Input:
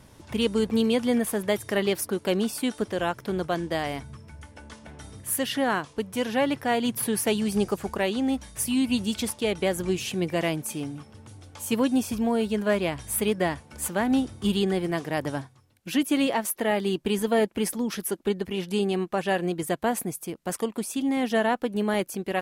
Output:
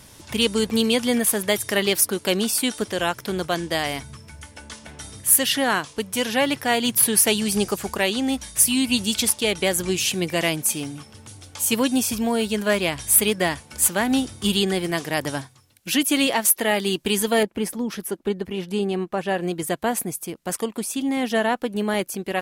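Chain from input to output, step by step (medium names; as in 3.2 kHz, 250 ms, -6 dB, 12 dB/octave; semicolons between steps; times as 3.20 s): treble shelf 2.1 kHz +11.5 dB, from 17.43 s -2.5 dB, from 19.41 s +4.5 dB; trim +1.5 dB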